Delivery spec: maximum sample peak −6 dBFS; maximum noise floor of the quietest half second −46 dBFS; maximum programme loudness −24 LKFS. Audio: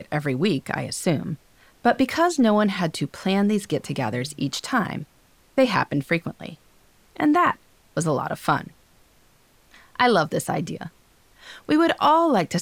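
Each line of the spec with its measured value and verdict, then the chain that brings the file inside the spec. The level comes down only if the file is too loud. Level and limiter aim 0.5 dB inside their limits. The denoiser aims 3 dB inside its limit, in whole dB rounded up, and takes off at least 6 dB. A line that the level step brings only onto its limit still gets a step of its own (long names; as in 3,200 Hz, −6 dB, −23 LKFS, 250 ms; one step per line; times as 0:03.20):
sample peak −7.0 dBFS: in spec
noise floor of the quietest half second −58 dBFS: in spec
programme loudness −22.5 LKFS: out of spec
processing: level −2 dB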